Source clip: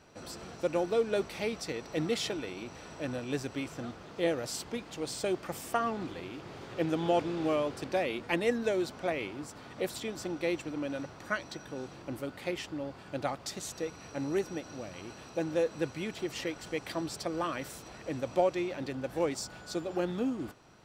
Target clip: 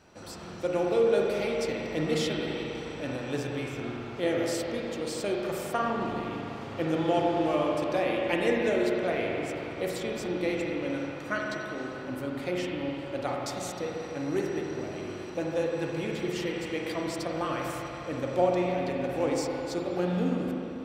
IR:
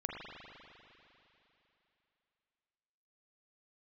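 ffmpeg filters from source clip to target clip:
-filter_complex "[1:a]atrim=start_sample=2205[s0];[0:a][s0]afir=irnorm=-1:irlink=0,volume=1.26"

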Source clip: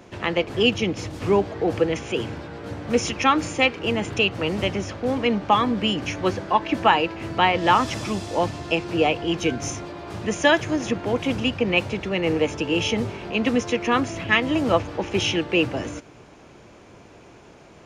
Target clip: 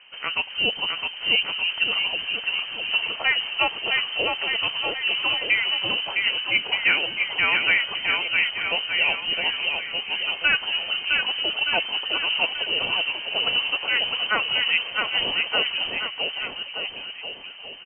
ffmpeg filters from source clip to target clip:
-af "lowpass=f=2700:t=q:w=0.5098,lowpass=f=2700:t=q:w=0.6013,lowpass=f=2700:t=q:w=0.9,lowpass=f=2700:t=q:w=2.563,afreqshift=-3200,aecho=1:1:660|1221|1698|2103|2448:0.631|0.398|0.251|0.158|0.1,volume=0.668"

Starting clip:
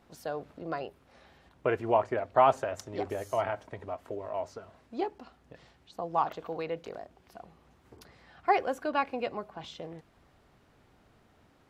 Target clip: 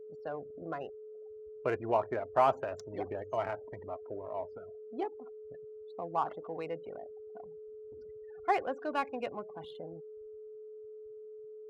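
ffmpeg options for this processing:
-af "aeval=exprs='val(0)+0.00891*sin(2*PI*430*n/s)':c=same,afftfilt=real='re*gte(hypot(re,im),0.00708)':imag='im*gte(hypot(re,im),0.00708)':win_size=1024:overlap=0.75,adynamicsmooth=sensitivity=7.5:basefreq=3300,volume=0.631"

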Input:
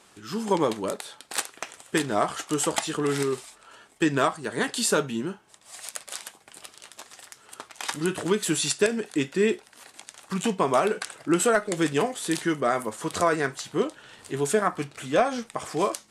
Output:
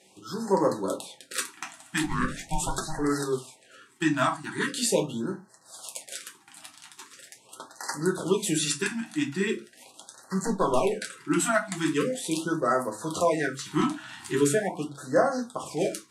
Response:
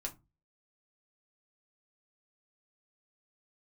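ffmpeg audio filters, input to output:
-filter_complex "[0:a]highpass=110,asplit=3[s0][s1][s2];[s0]afade=t=out:st=2.02:d=0.02[s3];[s1]aeval=exprs='val(0)*sin(2*PI*470*n/s)':c=same,afade=t=in:st=2.02:d=0.02,afade=t=out:st=2.98:d=0.02[s4];[s2]afade=t=in:st=2.98:d=0.02[s5];[s3][s4][s5]amix=inputs=3:normalize=0,asettb=1/sr,asplit=3[s6][s7][s8];[s6]atrim=end=10.444[s9];[s7]atrim=start=10.44:end=10.86,asetpts=PTS-STARTPTS,afade=t=in:d=0.004:c=qsin,afade=t=out:st=0.416:d=0.004:c=qsin,aeval=exprs='clip(val(0),-1,0.0944)':c=same[s10];[s8]atrim=start=10.856[s11];[s9][s10]acrossfade=d=0.004:c1=hsin:c2=qsin[s12];[s12][s11]acrossfade=d=0.004:c1=qsin:c2=hsin,asplit=3[s13][s14][s15];[s13]afade=t=out:st=13.66:d=0.02[s16];[s14]acontrast=64,afade=t=in:st=13.66:d=0.02,afade=t=out:st=14.48:d=0.02[s17];[s15]afade=t=in:st=14.48:d=0.02[s18];[s16][s17][s18]amix=inputs=3:normalize=0[s19];[1:a]atrim=start_sample=2205,atrim=end_sample=6174,asetrate=41895,aresample=44100[s20];[s19][s20]afir=irnorm=-1:irlink=0,afftfilt=real='re*(1-between(b*sr/1024,440*pow(2900/440,0.5+0.5*sin(2*PI*0.41*pts/sr))/1.41,440*pow(2900/440,0.5+0.5*sin(2*PI*0.41*pts/sr))*1.41))':imag='im*(1-between(b*sr/1024,440*pow(2900/440,0.5+0.5*sin(2*PI*0.41*pts/sr))/1.41,440*pow(2900/440,0.5+0.5*sin(2*PI*0.41*pts/sr))*1.41))':win_size=1024:overlap=0.75"

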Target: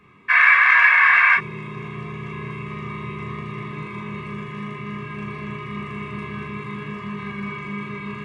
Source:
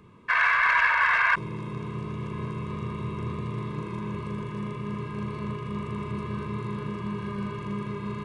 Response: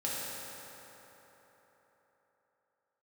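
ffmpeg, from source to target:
-filter_complex "[0:a]equalizer=f=2100:w=1.1:g=13[s0];[1:a]atrim=start_sample=2205,atrim=end_sample=3087,asetrate=61740,aresample=44100[s1];[s0][s1]afir=irnorm=-1:irlink=0"

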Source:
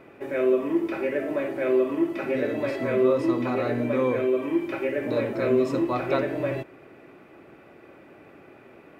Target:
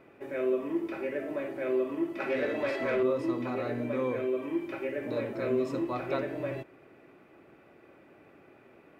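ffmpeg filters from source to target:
-filter_complex "[0:a]asettb=1/sr,asplit=3[s0][s1][s2];[s0]atrim=end=2.204[s3];[s1]atrim=start=2.2:end=3.03,asetpts=PTS-STARTPTS,afade=t=in:d=0.004:c=qsin,afade=t=out:st=0.826:d=0.004:c=qsin,asplit=2[s4][s5];[s5]highpass=f=720:p=1,volume=5.01,asoftclip=type=tanh:threshold=0.251[s6];[s4][s6]amix=inputs=2:normalize=0,lowpass=f=4300:p=1,volume=0.501[s7];[s2]atrim=start=3.026[s8];[s3][s7]acrossfade=d=0.004:c1=hsin:c2=qsin[s9];[s9][s8]acrossfade=d=0.004:c1=qsin:c2=hsin,volume=0.447"

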